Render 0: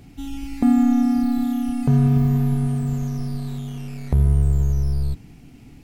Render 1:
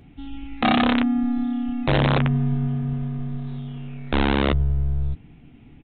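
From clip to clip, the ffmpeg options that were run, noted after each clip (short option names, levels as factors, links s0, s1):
-filter_complex "[0:a]aresample=8000,aeval=exprs='(mod(3.16*val(0)+1,2)-1)/3.16':c=same,aresample=44100,asplit=2[s0][s1];[s1]adelay=13,volume=0.211[s2];[s0][s2]amix=inputs=2:normalize=0,volume=0.708"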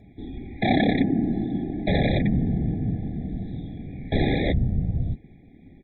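-af "afftfilt=real='hypot(re,im)*cos(2*PI*random(0))':imag='hypot(re,im)*sin(2*PI*random(1))':win_size=512:overlap=0.75,afftfilt=real='re*eq(mod(floor(b*sr/1024/820),2),0)':imag='im*eq(mod(floor(b*sr/1024/820),2),0)':win_size=1024:overlap=0.75,volume=1.68"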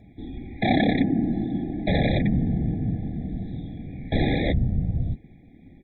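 -af "bandreject=f=400:w=12"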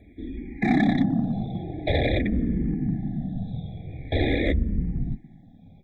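-filter_complex "[0:a]asplit=2[s0][s1];[s1]volume=8.91,asoftclip=hard,volume=0.112,volume=0.376[s2];[s0][s2]amix=inputs=2:normalize=0,asplit=2[s3][s4];[s4]afreqshift=-0.46[s5];[s3][s5]amix=inputs=2:normalize=1"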